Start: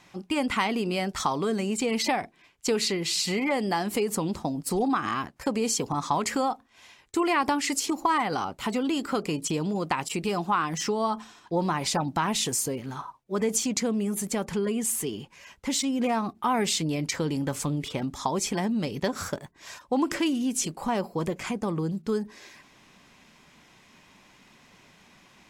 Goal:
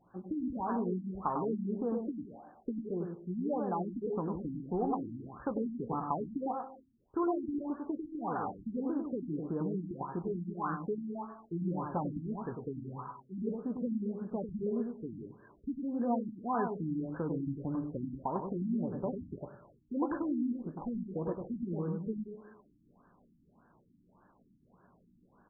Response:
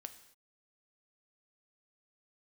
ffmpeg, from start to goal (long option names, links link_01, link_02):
-filter_complex "[0:a]asplit=2[link_01][link_02];[link_02]adelay=17,volume=-10.5dB[link_03];[link_01][link_03]amix=inputs=2:normalize=0,asplit=2[link_04][link_05];[1:a]atrim=start_sample=2205,asetrate=33075,aresample=44100,adelay=99[link_06];[link_05][link_06]afir=irnorm=-1:irlink=0,volume=-1dB[link_07];[link_04][link_07]amix=inputs=2:normalize=0,afftfilt=real='re*lt(b*sr/1024,320*pow(1800/320,0.5+0.5*sin(2*PI*1.7*pts/sr)))':imag='im*lt(b*sr/1024,320*pow(1800/320,0.5+0.5*sin(2*PI*1.7*pts/sr)))':win_size=1024:overlap=0.75,volume=-7.5dB"